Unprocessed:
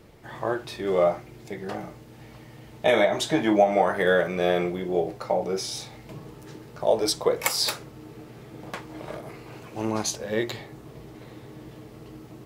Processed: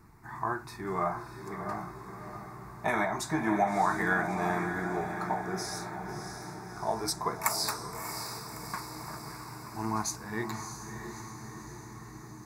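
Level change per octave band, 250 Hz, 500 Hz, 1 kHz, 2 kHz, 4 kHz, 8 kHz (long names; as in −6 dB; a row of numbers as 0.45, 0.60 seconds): −5.5, −12.5, −1.5, −3.0, −8.5, −3.5 decibels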